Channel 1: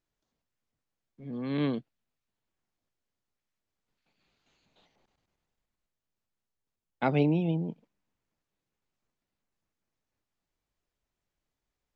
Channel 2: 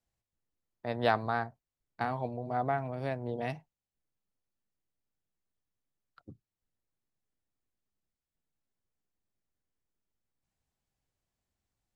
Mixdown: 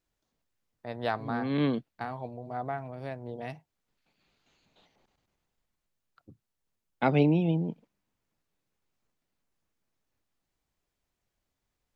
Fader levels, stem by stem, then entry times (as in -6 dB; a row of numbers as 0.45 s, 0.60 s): +2.0 dB, -3.5 dB; 0.00 s, 0.00 s